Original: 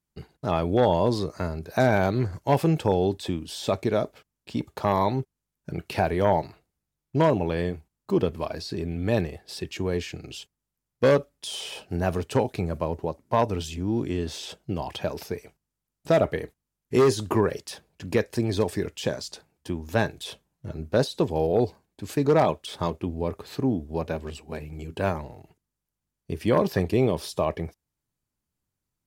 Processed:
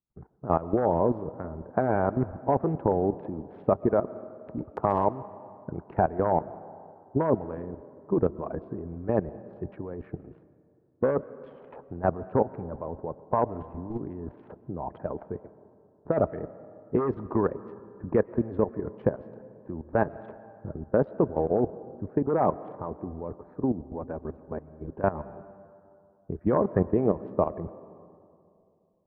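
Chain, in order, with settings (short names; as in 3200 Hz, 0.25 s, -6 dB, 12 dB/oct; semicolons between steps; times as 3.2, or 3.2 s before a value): Wiener smoothing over 15 samples; LPF 1400 Hz 24 dB/oct; 4.58–5.05 transient shaper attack +4 dB, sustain +8 dB; level quantiser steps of 12 dB; harmonic-percussive split harmonic -9 dB; on a send: HPF 110 Hz + reverb RT60 2.6 s, pre-delay 85 ms, DRR 17 dB; on the sum: gain +5 dB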